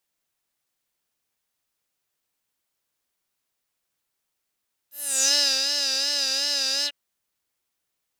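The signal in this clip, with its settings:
subtractive patch with vibrato C#5, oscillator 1 square, sub −1 dB, noise −8.5 dB, filter bandpass, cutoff 2,500 Hz, Q 5.4, filter envelope 2.5 octaves, filter decay 0.42 s, attack 335 ms, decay 0.39 s, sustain −6 dB, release 0.05 s, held 1.95 s, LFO 2.7 Hz, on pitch 75 cents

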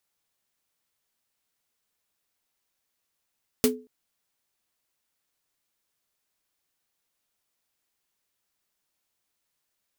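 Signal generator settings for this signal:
synth snare length 0.23 s, tones 250 Hz, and 430 Hz, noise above 600 Hz, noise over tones −2 dB, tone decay 0.33 s, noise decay 0.12 s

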